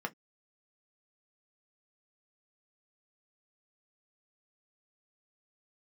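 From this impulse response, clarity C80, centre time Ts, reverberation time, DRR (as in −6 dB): 42.5 dB, 4 ms, non-exponential decay, 4.0 dB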